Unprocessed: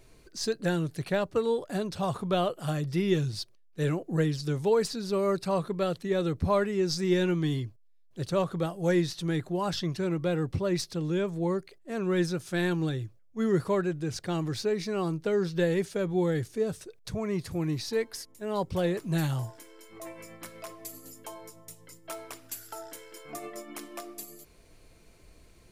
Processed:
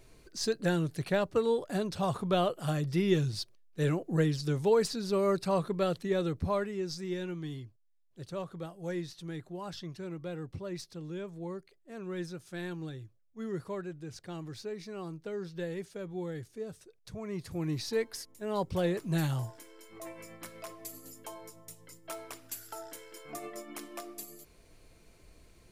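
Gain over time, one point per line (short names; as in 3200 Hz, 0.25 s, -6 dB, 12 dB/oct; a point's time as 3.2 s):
6.01 s -1 dB
7.18 s -11 dB
16.98 s -11 dB
17.8 s -2 dB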